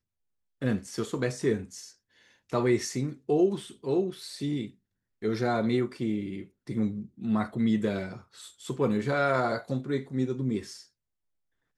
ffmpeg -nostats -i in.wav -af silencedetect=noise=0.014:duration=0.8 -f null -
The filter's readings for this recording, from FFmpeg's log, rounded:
silence_start: 10.76
silence_end: 11.77 | silence_duration: 1.01